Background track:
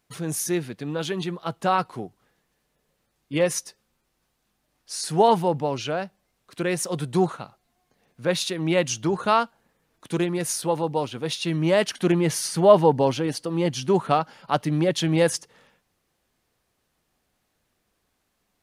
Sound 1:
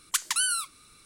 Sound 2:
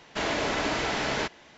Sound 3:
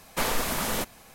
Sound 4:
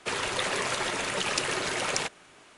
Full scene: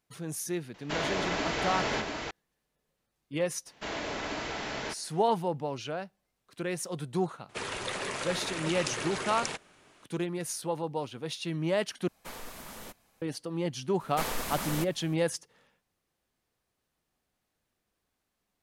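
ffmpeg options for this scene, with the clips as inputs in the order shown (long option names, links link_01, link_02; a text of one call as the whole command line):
ffmpeg -i bed.wav -i cue0.wav -i cue1.wav -i cue2.wav -i cue3.wav -filter_complex "[2:a]asplit=2[link_01][link_02];[3:a]asplit=2[link_03][link_04];[0:a]volume=-8.5dB[link_05];[link_01]aecho=1:1:691:0.562[link_06];[4:a]lowshelf=frequency=390:gain=4[link_07];[link_05]asplit=2[link_08][link_09];[link_08]atrim=end=12.084[link_10];[link_03]atrim=end=1.14,asetpts=PTS-STARTPTS,volume=-16.5dB[link_11];[link_09]atrim=start=13.216[link_12];[link_06]atrim=end=1.57,asetpts=PTS-STARTPTS,volume=-3.5dB,afade=type=in:duration=0.004:curve=hsin,afade=type=out:start_time=1.566:duration=0.004:curve=hsin,adelay=740[link_13];[link_02]atrim=end=1.57,asetpts=PTS-STARTPTS,volume=-7.5dB,afade=type=in:duration=0.004:curve=hsin,afade=type=out:start_time=1.566:duration=0.004:curve=hsin,adelay=3660[link_14];[link_07]atrim=end=2.57,asetpts=PTS-STARTPTS,volume=-6.5dB,afade=type=in:duration=0.004:curve=hsin,afade=type=out:start_time=2.566:duration=0.004:curve=hsin,adelay=7490[link_15];[link_04]atrim=end=1.14,asetpts=PTS-STARTPTS,volume=-6.5dB,afade=type=in:duration=0.004:curve=hsin,afade=type=out:start_time=1.136:duration=0.004:curve=hsin,adelay=14000[link_16];[link_10][link_11]acrossfade=duration=0.004:curve1=hsin:curve2=hsin[link_17];[link_17][link_12]acrossfade=duration=0.004:curve1=hsin:curve2=hsin[link_18];[link_18][link_13][link_14][link_15][link_16]amix=inputs=5:normalize=0" out.wav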